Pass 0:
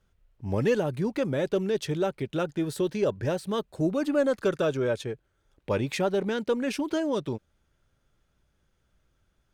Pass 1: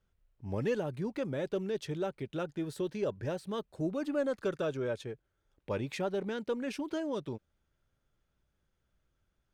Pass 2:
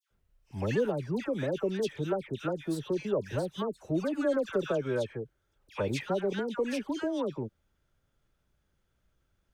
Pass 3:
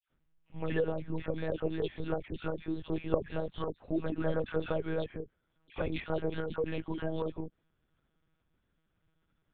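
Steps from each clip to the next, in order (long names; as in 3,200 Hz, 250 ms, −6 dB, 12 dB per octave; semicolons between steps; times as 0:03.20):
high-shelf EQ 6,400 Hz −4 dB; level −7.5 dB
all-pass dispersion lows, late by 109 ms, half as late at 1,500 Hz; level +3.5 dB
one-pitch LPC vocoder at 8 kHz 160 Hz; level −2.5 dB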